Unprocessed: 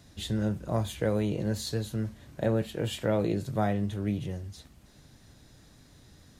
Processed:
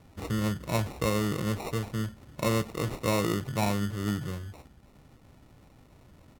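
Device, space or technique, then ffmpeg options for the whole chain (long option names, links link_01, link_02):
crushed at another speed: -af "asetrate=55125,aresample=44100,acrusher=samples=22:mix=1:aa=0.000001,asetrate=35280,aresample=44100"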